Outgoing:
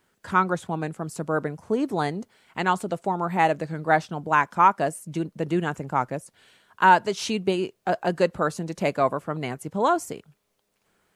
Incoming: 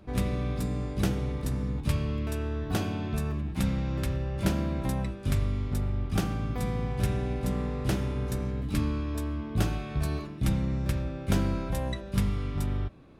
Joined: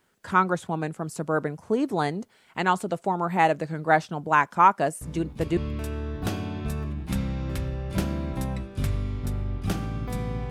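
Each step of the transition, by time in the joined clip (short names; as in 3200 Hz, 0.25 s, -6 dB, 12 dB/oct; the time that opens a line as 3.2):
outgoing
5.01 add incoming from 1.49 s 0.56 s -8.5 dB
5.57 switch to incoming from 2.05 s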